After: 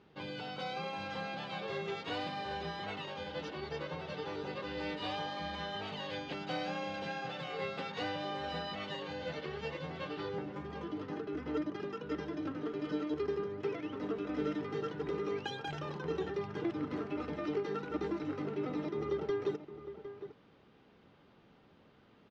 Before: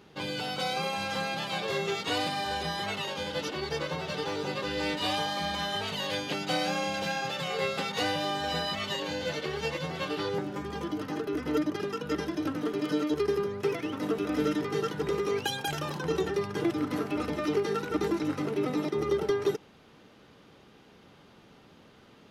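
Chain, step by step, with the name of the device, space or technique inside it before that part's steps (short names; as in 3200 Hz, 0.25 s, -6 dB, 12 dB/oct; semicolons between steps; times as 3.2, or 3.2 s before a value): shout across a valley (air absorption 170 m; outdoor echo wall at 130 m, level -11 dB); gain -7 dB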